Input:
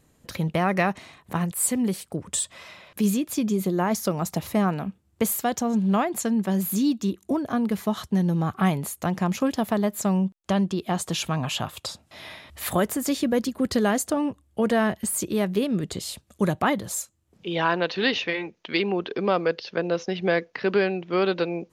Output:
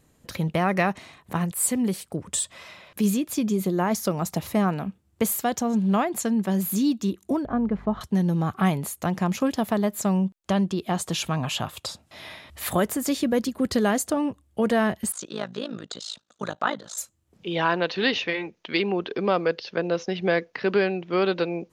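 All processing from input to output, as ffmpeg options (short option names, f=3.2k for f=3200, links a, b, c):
-filter_complex "[0:a]asettb=1/sr,asplit=3[a][b][c];[a]atrim=end=7.454[d];[b]atrim=start=7.45:end=8.01,asetpts=PTS-STARTPTS,afade=t=in:d=0.004:c=qsin,afade=t=out:st=0.556:d=0.004:c=qsin,aeval=exprs='val(0)+0.00708*(sin(2*PI*50*n/s)+sin(2*PI*2*50*n/s)/2+sin(2*PI*3*50*n/s)/3+sin(2*PI*4*50*n/s)/4+sin(2*PI*5*50*n/s)/5)':c=same,lowpass=1.4k[e];[c]atrim=start=8.006[f];[d][e]acrossfade=d=0.004:c1=hsin:c2=qsin[g];[g][f]acrossfade=d=0.004:c1=qsin:c2=hsin,asettb=1/sr,asplit=3[h][i][j];[h]atrim=end=15.124[k];[i]atrim=start=15.12:end=16.98,asetpts=PTS-STARTPTS,afade=t=in:d=0.004:c=qsin,afade=t=out:st=1.856:d=0.004:c=qsin,highpass=300,equalizer=f=370:t=q:w=4:g=-9,equalizer=f=1.4k:t=q:w=4:g=8,equalizer=f=2.2k:t=q:w=4:g=-5,equalizer=f=3.8k:t=q:w=4:g=7,equalizer=f=6.4k:t=q:w=4:g=3,lowpass=f=7.1k:w=0.5412,lowpass=f=7.1k:w=1.3066,tremolo=f=54:d=0.889[l];[j]atrim=start=16.976[m];[k][l]acrossfade=d=0.004:c1=hsin:c2=qsin[n];[n][m]acrossfade=d=0.004:c1=qsin:c2=hsin"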